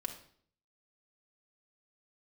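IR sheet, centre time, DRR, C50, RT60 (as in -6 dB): 13 ms, 2.5 dB, 9.0 dB, 0.55 s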